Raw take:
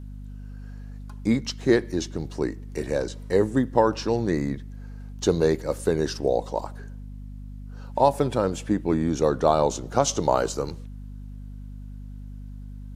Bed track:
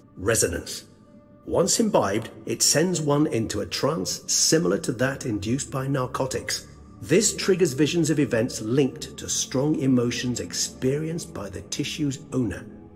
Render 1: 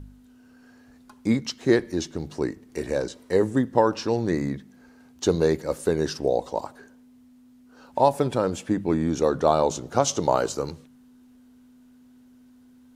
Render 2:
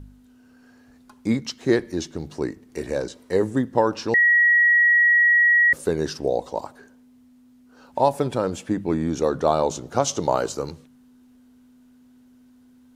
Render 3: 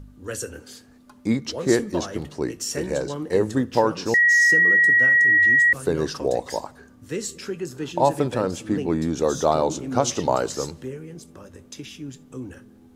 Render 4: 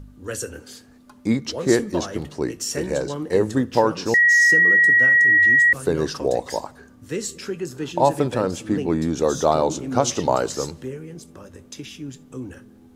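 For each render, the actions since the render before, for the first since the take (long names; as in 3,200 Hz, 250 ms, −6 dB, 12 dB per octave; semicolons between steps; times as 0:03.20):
hum removal 50 Hz, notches 4
0:04.14–0:05.73: beep over 1,910 Hz −13 dBFS
mix in bed track −10 dB
level +1.5 dB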